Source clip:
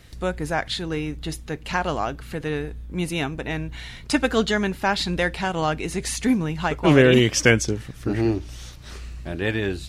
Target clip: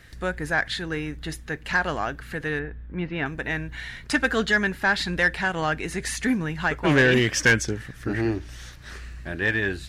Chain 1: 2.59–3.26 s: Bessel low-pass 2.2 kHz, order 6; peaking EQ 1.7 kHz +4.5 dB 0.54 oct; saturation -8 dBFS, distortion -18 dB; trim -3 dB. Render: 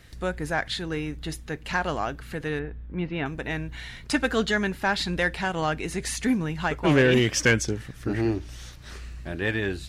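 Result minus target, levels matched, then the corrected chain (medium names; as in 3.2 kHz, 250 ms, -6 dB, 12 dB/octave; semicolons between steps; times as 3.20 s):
2 kHz band -3.0 dB
2.59–3.26 s: Bessel low-pass 2.2 kHz, order 6; peaking EQ 1.7 kHz +11.5 dB 0.54 oct; saturation -8 dBFS, distortion -14 dB; trim -3 dB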